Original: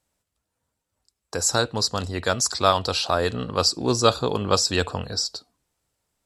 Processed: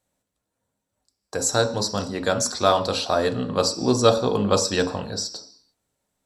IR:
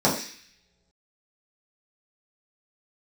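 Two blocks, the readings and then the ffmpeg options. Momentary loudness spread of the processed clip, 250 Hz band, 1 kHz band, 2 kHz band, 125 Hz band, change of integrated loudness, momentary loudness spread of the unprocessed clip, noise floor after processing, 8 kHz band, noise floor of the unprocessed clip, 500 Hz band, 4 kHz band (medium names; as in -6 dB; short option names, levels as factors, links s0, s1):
10 LU, +3.5 dB, -0.5 dB, -1.0 dB, 0.0 dB, +0.5 dB, 6 LU, -81 dBFS, -1.0 dB, -82 dBFS, +3.0 dB, -2.5 dB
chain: -filter_complex "[0:a]asplit=2[s0][s1];[1:a]atrim=start_sample=2205,afade=t=out:st=0.4:d=0.01,atrim=end_sample=18081[s2];[s1][s2]afir=irnorm=-1:irlink=0,volume=0.0891[s3];[s0][s3]amix=inputs=2:normalize=0,volume=0.75"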